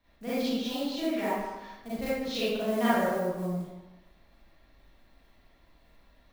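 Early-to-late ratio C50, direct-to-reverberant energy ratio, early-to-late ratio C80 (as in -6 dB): -5.0 dB, -12.0 dB, 0.0 dB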